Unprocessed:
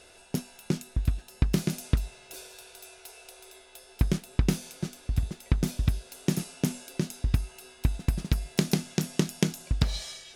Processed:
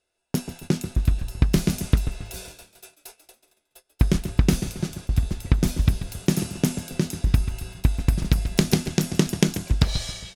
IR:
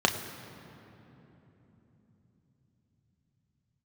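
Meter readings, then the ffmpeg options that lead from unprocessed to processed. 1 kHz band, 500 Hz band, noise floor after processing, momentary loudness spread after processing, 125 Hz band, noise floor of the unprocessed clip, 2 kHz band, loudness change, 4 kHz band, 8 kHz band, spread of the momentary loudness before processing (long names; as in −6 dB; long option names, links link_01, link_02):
+6.0 dB, +6.0 dB, −75 dBFS, 8 LU, +6.0 dB, −54 dBFS, +5.5 dB, +6.0 dB, +5.5 dB, +5.5 dB, 18 LU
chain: -filter_complex "[0:a]asplit=2[link_01][link_02];[link_02]adelay=136,lowpass=frequency=2000:poles=1,volume=-12dB,asplit=2[link_03][link_04];[link_04]adelay=136,lowpass=frequency=2000:poles=1,volume=0.46,asplit=2[link_05][link_06];[link_06]adelay=136,lowpass=frequency=2000:poles=1,volume=0.46,asplit=2[link_07][link_08];[link_08]adelay=136,lowpass=frequency=2000:poles=1,volume=0.46,asplit=2[link_09][link_10];[link_10]adelay=136,lowpass=frequency=2000:poles=1,volume=0.46[link_11];[link_03][link_05][link_07][link_09][link_11]amix=inputs=5:normalize=0[link_12];[link_01][link_12]amix=inputs=2:normalize=0,agate=range=-30dB:threshold=-46dB:ratio=16:detection=peak,asplit=2[link_13][link_14];[link_14]asplit=3[link_15][link_16][link_17];[link_15]adelay=140,afreqshift=-79,volume=-14.5dB[link_18];[link_16]adelay=280,afreqshift=-158,volume=-23.1dB[link_19];[link_17]adelay=420,afreqshift=-237,volume=-31.8dB[link_20];[link_18][link_19][link_20]amix=inputs=3:normalize=0[link_21];[link_13][link_21]amix=inputs=2:normalize=0,volume=5.5dB"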